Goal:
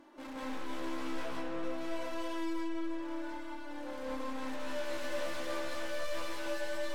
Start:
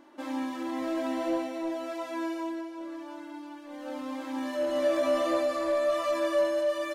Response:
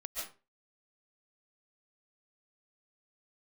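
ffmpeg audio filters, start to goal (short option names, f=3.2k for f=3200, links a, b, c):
-filter_complex "[0:a]aeval=exprs='(tanh(112*val(0)+0.3)-tanh(0.3))/112':c=same,asettb=1/sr,asplit=3[a][b][c];[a]atrim=end=1.224[d];[b]atrim=start=1.22:end=1.63,asetpts=PTS-STARTPTS,afade=t=in:d=0.004:c=qsin,afade=t=out:st=0.406:d=0.004:c=qsin,highshelf=f=3.4k:g=-11[e];[c]atrim=start=1.626[f];[d][e]acrossfade=d=0.004:c1=hsin:c2=qsin[g];[g][f]acrossfade=d=0.004:c1=qsin:c2=hsin[h];[1:a]atrim=start_sample=2205,asetrate=34839,aresample=44100[i];[h][i]afir=irnorm=-1:irlink=0,volume=2dB"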